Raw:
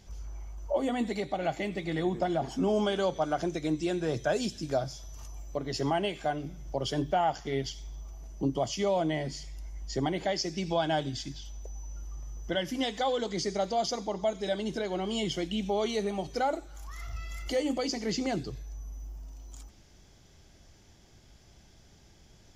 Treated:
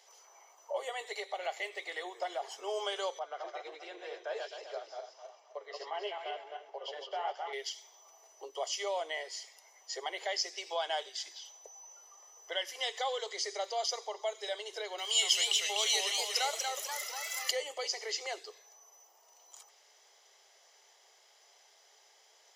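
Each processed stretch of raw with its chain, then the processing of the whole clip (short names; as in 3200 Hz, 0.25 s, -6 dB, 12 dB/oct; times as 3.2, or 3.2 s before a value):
3.19–7.53 regenerating reverse delay 0.13 s, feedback 50%, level -2.5 dB + flange 1.4 Hz, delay 4.7 ms, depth 5.9 ms, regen +66% + air absorption 200 m
14.98–17.51 tilt +4.5 dB/oct + warbling echo 0.242 s, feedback 54%, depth 187 cents, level -3.5 dB
whole clip: comb 1 ms, depth 34%; dynamic EQ 800 Hz, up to -6 dB, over -42 dBFS, Q 0.85; steep high-pass 420 Hz 72 dB/oct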